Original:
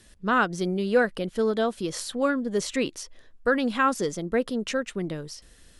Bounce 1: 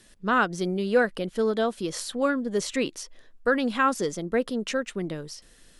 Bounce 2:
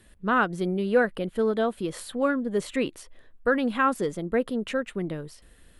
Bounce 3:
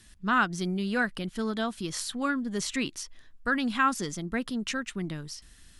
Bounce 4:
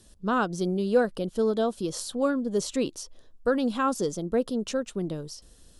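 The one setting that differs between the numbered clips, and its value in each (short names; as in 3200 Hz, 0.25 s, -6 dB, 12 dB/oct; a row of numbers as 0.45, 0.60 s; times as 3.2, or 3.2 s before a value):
bell, frequency: 63, 5700, 500, 2000 Hz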